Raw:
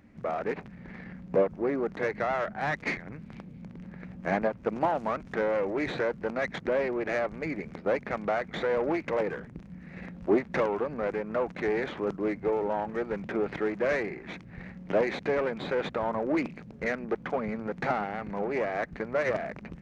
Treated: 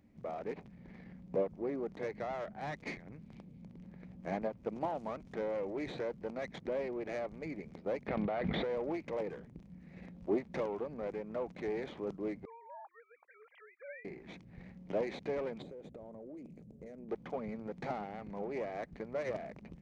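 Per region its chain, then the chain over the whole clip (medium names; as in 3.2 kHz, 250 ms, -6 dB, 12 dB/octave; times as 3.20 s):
8.08–8.64 s: low-pass 4 kHz 24 dB/octave + level flattener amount 100%
12.45–14.05 s: formants replaced by sine waves + inverse Chebyshev high-pass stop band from 240 Hz, stop band 60 dB
15.62–17.09 s: high-order bell 2.1 kHz -12.5 dB 3 oct + compression 12:1, threshold -36 dBFS
whole clip: peaking EQ 1.5 kHz -9 dB 0.98 oct; band-stop 2.7 kHz, Q 26; trim -8 dB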